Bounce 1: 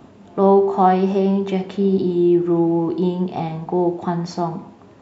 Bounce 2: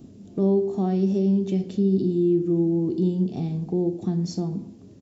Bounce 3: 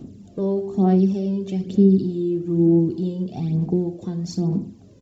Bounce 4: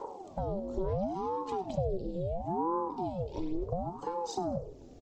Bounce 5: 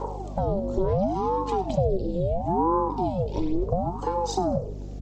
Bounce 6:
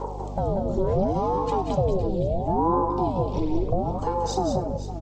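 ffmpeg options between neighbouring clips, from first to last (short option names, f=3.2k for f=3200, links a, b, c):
-filter_complex "[0:a]highshelf=f=2.2k:g=8.5,asplit=2[a][b];[b]acompressor=threshold=-22dB:ratio=6,volume=-0.5dB[c];[a][c]amix=inputs=2:normalize=0,firequalizer=gain_entry='entry(240,0);entry(910,-24);entry(5300,-9)':delay=0.05:min_phase=1,volume=-4.5dB"
-af "aphaser=in_gain=1:out_gain=1:delay=2:decay=0.57:speed=1.1:type=sinusoidal"
-filter_complex "[0:a]acompressor=threshold=-31dB:ratio=3,asplit=4[a][b][c][d];[b]adelay=97,afreqshift=120,volume=-20dB[e];[c]adelay=194,afreqshift=240,volume=-29.1dB[f];[d]adelay=291,afreqshift=360,volume=-38.2dB[g];[a][e][f][g]amix=inputs=4:normalize=0,aeval=exprs='val(0)*sin(2*PI*420*n/s+420*0.65/0.72*sin(2*PI*0.72*n/s))':c=same"
-af "aeval=exprs='val(0)+0.00708*(sin(2*PI*50*n/s)+sin(2*PI*2*50*n/s)/2+sin(2*PI*3*50*n/s)/3+sin(2*PI*4*50*n/s)/4+sin(2*PI*5*50*n/s)/5)':c=same,volume=8.5dB"
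-af "aecho=1:1:181|192|508|520:0.398|0.282|0.106|0.178"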